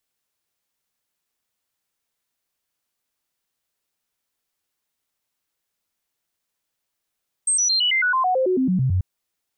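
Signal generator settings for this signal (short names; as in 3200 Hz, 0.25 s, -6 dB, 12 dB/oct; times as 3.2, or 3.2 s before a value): stepped sine 8340 Hz down, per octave 2, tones 14, 0.11 s, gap 0.00 s -16.5 dBFS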